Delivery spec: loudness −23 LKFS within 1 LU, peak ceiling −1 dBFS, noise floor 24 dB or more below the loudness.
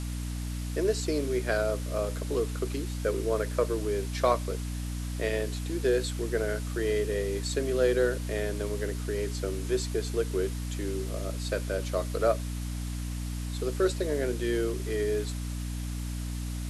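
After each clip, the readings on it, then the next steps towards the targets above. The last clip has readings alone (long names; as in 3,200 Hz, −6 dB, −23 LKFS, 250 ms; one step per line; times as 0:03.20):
mains hum 60 Hz; hum harmonics up to 300 Hz; level of the hum −31 dBFS; background noise floor −34 dBFS; target noise floor −55 dBFS; integrated loudness −30.5 LKFS; sample peak −10.5 dBFS; target loudness −23.0 LKFS
→ hum removal 60 Hz, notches 5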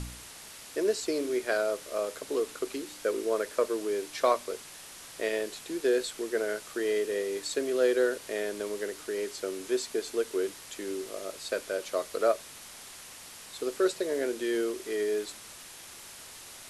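mains hum none found; background noise floor −47 dBFS; target noise floor −55 dBFS
→ noise reduction from a noise print 8 dB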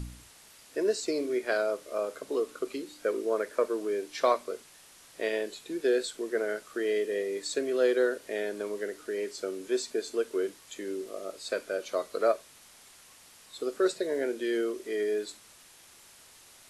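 background noise floor −55 dBFS; target noise floor −56 dBFS
→ noise reduction from a noise print 6 dB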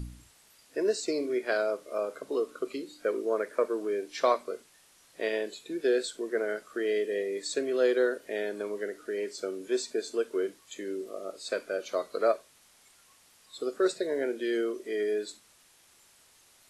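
background noise floor −61 dBFS; integrated loudness −31.5 LKFS; sample peak −11.5 dBFS; target loudness −23.0 LKFS
→ level +8.5 dB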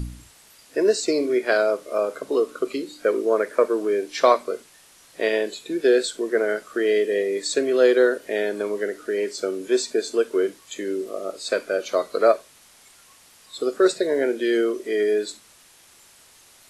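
integrated loudness −23.0 LKFS; sample peak −3.0 dBFS; background noise floor −53 dBFS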